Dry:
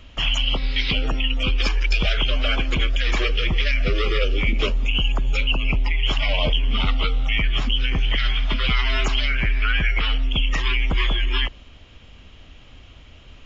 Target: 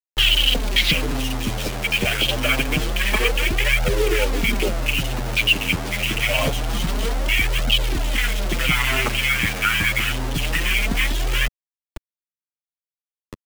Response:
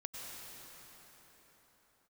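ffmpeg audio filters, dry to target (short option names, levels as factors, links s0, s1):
-filter_complex "[0:a]afftfilt=real='re*gte(hypot(re,im),0.02)':imag='im*gte(hypot(re,im),0.02)':win_size=1024:overlap=0.75,afwtdn=0.0562,equalizer=f=4200:w=1.3:g=4.5,asplit=2[s0][s1];[s1]acompressor=threshold=0.0178:ratio=6,volume=1.19[s2];[s0][s2]amix=inputs=2:normalize=0,acrusher=bits=4:mix=0:aa=0.000001,acrossover=split=180|1700[s3][s4][s5];[s3]asoftclip=type=tanh:threshold=0.0531[s6];[s6][s4][s5]amix=inputs=3:normalize=0,flanger=delay=1.3:depth=9.7:regen=2:speed=0.26:shape=triangular,volume=2.11"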